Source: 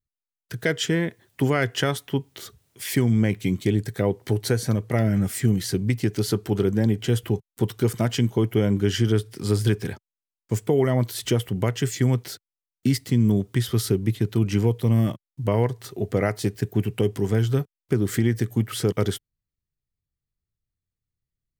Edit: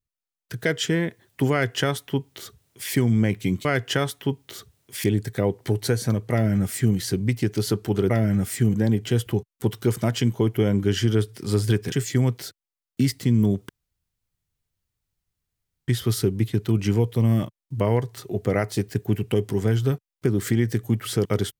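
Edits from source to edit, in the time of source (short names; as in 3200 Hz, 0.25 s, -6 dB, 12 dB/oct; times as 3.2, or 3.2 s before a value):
1.52–2.91 copy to 3.65
4.93–5.57 copy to 6.71
9.89–11.78 cut
13.55 insert room tone 2.19 s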